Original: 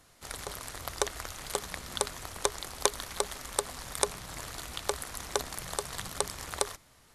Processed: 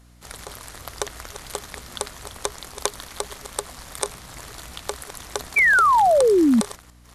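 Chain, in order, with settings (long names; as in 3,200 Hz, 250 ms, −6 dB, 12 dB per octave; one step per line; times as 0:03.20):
delay that plays each chunk backwards 238 ms, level −12 dB
sound drawn into the spectrogram fall, 0:05.56–0:06.61, 210–2,400 Hz −17 dBFS
mains hum 60 Hz, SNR 28 dB
level +1.5 dB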